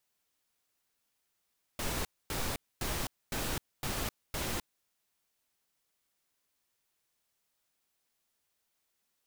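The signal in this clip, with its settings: noise bursts pink, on 0.26 s, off 0.25 s, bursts 6, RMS -34.5 dBFS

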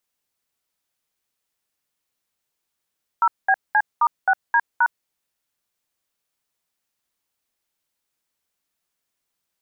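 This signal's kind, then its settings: DTMF "0BC*6D#", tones 58 ms, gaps 206 ms, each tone -16 dBFS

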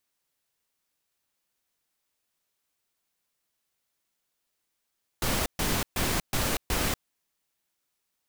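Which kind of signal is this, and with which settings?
noise bursts pink, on 0.24 s, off 0.13 s, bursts 5, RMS -27 dBFS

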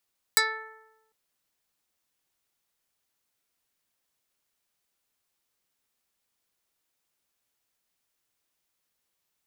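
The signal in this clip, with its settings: plucked string A4, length 0.75 s, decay 1.05 s, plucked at 0.14, dark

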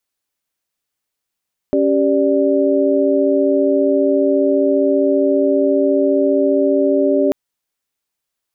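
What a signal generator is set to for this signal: chord C#4/G4/D5 sine, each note -16 dBFS 5.59 s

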